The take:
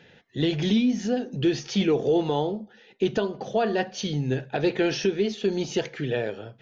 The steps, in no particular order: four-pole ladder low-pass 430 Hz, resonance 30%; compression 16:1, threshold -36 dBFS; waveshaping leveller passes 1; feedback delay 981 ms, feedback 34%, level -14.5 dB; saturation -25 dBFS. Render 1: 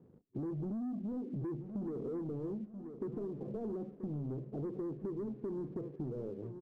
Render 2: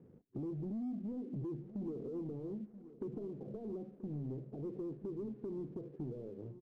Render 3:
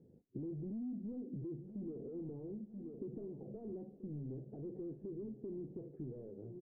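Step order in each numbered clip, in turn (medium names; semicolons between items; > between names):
saturation > four-pole ladder low-pass > waveshaping leveller > feedback delay > compression; saturation > compression > four-pole ladder low-pass > waveshaping leveller > feedback delay; waveshaping leveller > saturation > feedback delay > compression > four-pole ladder low-pass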